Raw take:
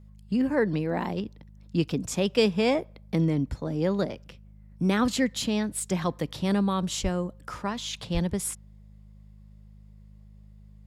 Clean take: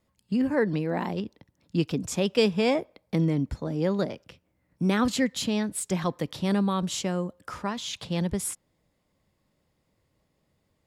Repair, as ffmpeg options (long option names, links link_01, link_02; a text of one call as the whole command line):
ffmpeg -i in.wav -filter_complex "[0:a]bandreject=frequency=51.7:width_type=h:width=4,bandreject=frequency=103.4:width_type=h:width=4,bandreject=frequency=155.1:width_type=h:width=4,bandreject=frequency=206.8:width_type=h:width=4,asplit=3[link_01][link_02][link_03];[link_01]afade=type=out:start_time=7.02:duration=0.02[link_04];[link_02]highpass=frequency=140:width=0.5412,highpass=frequency=140:width=1.3066,afade=type=in:start_time=7.02:duration=0.02,afade=type=out:start_time=7.14:duration=0.02[link_05];[link_03]afade=type=in:start_time=7.14:duration=0.02[link_06];[link_04][link_05][link_06]amix=inputs=3:normalize=0,asplit=3[link_07][link_08][link_09];[link_07]afade=type=out:start_time=8.13:duration=0.02[link_10];[link_08]highpass=frequency=140:width=0.5412,highpass=frequency=140:width=1.3066,afade=type=in:start_time=8.13:duration=0.02,afade=type=out:start_time=8.25:duration=0.02[link_11];[link_09]afade=type=in:start_time=8.25:duration=0.02[link_12];[link_10][link_11][link_12]amix=inputs=3:normalize=0" out.wav